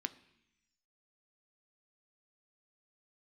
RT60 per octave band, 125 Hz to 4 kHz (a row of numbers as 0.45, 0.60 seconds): 1.1, 1.1, 0.80, 0.80, 1.2, 1.4 seconds